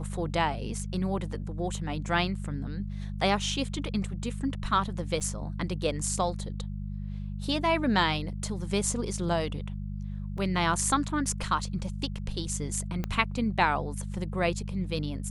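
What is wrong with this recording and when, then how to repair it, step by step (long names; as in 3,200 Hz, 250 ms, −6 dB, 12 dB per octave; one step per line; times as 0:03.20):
mains hum 50 Hz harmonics 4 −35 dBFS
0:05.20–0:05.21: drop-out 7 ms
0:10.38: drop-out 2.6 ms
0:13.04: click −18 dBFS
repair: click removal
hum removal 50 Hz, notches 4
repair the gap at 0:05.20, 7 ms
repair the gap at 0:10.38, 2.6 ms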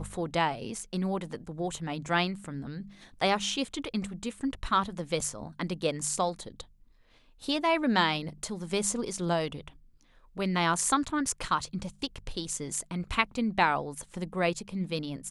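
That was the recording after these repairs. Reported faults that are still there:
0:13.04: click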